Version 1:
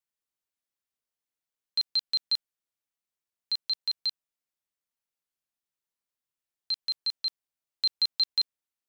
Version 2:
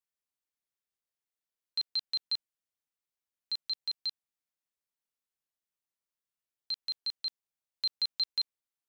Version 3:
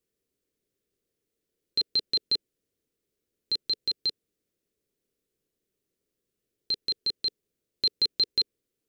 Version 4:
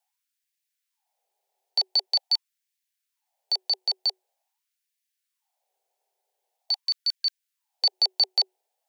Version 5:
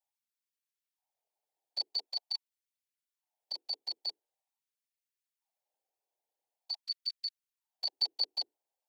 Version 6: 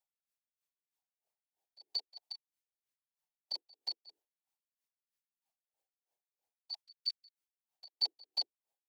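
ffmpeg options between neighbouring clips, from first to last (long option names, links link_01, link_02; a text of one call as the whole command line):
ffmpeg -i in.wav -filter_complex "[0:a]acrossover=split=5500[link_01][link_02];[link_02]acompressor=threshold=-43dB:ratio=4:attack=1:release=60[link_03];[link_01][link_03]amix=inputs=2:normalize=0,volume=-4dB" out.wav
ffmpeg -i in.wav -af "lowshelf=frequency=600:width_type=q:width=3:gain=11.5,volume=6.5dB" out.wav
ffmpeg -i in.wav -af "afreqshift=370,afftfilt=real='re*gte(b*sr/1024,220*pow(1600/220,0.5+0.5*sin(2*PI*0.45*pts/sr)))':imag='im*gte(b*sr/1024,220*pow(1600/220,0.5+0.5*sin(2*PI*0.45*pts/sr)))':win_size=1024:overlap=0.75,volume=3dB" out.wav
ffmpeg -i in.wav -af "afftfilt=real='hypot(re,im)*cos(2*PI*random(0))':imag='hypot(re,im)*sin(2*PI*random(1))':win_size=512:overlap=0.75,volume=-5.5dB" out.wav
ffmpeg -i in.wav -af "aeval=exprs='val(0)*pow(10,-27*(0.5-0.5*cos(2*PI*3.1*n/s))/20)':channel_layout=same,volume=1dB" out.wav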